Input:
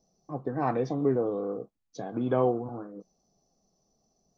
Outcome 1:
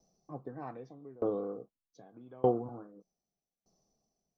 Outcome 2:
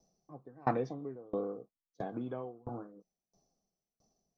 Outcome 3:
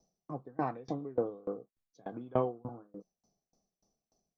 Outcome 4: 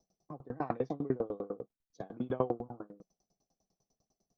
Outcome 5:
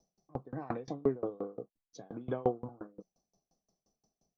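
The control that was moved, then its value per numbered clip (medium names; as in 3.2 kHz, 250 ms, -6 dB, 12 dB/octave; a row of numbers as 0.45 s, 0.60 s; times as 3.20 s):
sawtooth tremolo in dB, rate: 0.82 Hz, 1.5 Hz, 3.4 Hz, 10 Hz, 5.7 Hz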